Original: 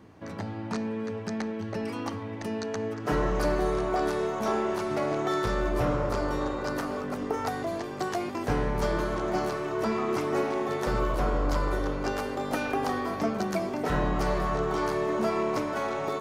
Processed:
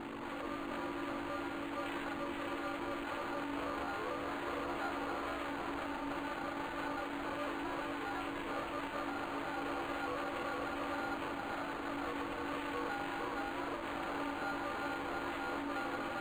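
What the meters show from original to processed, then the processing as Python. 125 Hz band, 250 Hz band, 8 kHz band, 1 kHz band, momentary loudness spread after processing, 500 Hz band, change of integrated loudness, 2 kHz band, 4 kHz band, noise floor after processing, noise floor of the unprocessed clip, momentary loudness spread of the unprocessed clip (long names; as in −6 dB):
−19.5 dB, −10.0 dB, −13.0 dB, −7.5 dB, 2 LU, −13.5 dB, −10.0 dB, −5.0 dB, −5.5 dB, −42 dBFS, −36 dBFS, 6 LU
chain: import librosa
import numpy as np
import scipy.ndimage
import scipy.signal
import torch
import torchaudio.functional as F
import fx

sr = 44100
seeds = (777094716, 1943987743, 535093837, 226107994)

p1 = fx.lower_of_two(x, sr, delay_ms=3.5)
p2 = fx.dereverb_blind(p1, sr, rt60_s=1.0)
p3 = scipy.signal.sosfilt(scipy.signal.butter(6, 430.0, 'highpass', fs=sr, output='sos'), p2)
p4 = fx.over_compress(p3, sr, threshold_db=-42.0, ratio=-1.0)
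p5 = p3 + (p4 * 10.0 ** (-1.0 / 20.0))
p6 = p5 + 10.0 ** (-38.0 / 20.0) * np.sin(2.0 * np.pi * 11000.0 * np.arange(len(p5)) / sr)
p7 = fx.quant_companded(p6, sr, bits=2)
p8 = fx.fixed_phaser(p7, sr, hz=1700.0, stages=6)
p9 = p8 * np.sin(2.0 * np.pi * 310.0 * np.arange(len(p8)) / sr)
p10 = fx.doubler(p9, sr, ms=46.0, db=-11)
p11 = p10 + 10.0 ** (-4.5 / 20.0) * np.pad(p10, (int(458 * sr / 1000.0), 0))[:len(p10)]
p12 = np.interp(np.arange(len(p11)), np.arange(len(p11))[::8], p11[::8])
y = p12 * 10.0 ** (-7.5 / 20.0)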